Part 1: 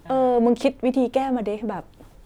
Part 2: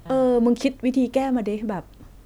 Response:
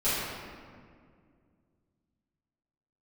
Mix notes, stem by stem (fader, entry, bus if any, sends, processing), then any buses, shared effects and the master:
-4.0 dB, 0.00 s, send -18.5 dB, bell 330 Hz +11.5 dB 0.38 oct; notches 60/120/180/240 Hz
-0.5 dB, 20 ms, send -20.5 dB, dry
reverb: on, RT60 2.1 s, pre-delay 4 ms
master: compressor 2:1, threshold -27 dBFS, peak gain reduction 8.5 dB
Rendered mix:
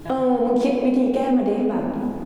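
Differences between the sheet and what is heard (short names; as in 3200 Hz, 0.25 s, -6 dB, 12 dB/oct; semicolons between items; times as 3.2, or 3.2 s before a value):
stem 1 -4.0 dB -> +5.5 dB; reverb return +9.5 dB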